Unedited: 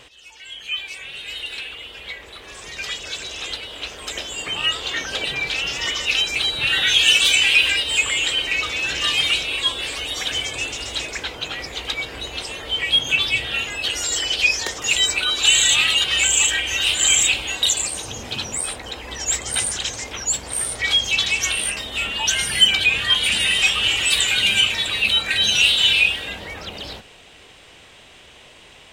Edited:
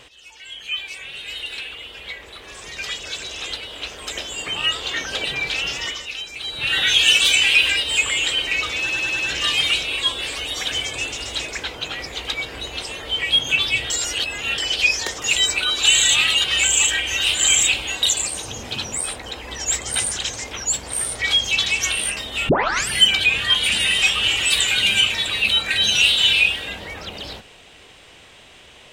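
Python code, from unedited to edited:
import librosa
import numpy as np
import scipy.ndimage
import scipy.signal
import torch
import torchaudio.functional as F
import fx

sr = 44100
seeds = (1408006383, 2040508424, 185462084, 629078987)

y = fx.edit(x, sr, fx.fade_down_up(start_s=5.7, length_s=1.09, db=-11.0, fade_s=0.4),
    fx.stutter(start_s=8.79, slice_s=0.1, count=5),
    fx.reverse_span(start_s=13.5, length_s=0.68),
    fx.tape_start(start_s=22.09, length_s=0.41), tone=tone)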